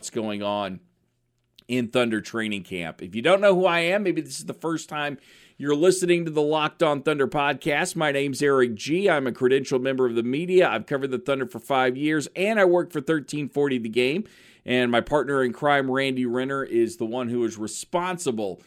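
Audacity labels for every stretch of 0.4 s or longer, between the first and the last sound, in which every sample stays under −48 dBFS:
0.780000	1.590000	silence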